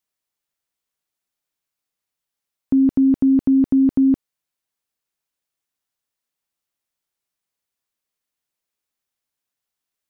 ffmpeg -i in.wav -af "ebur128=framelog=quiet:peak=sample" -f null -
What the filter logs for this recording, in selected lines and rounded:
Integrated loudness:
  I:         -17.1 LUFS
  Threshold: -27.1 LUFS
Loudness range:
  LRA:         7.1 LU
  Threshold: -40.8 LUFS
  LRA low:   -26.4 LUFS
  LRA high:  -19.3 LUFS
Sample peak:
  Peak:      -10.7 dBFS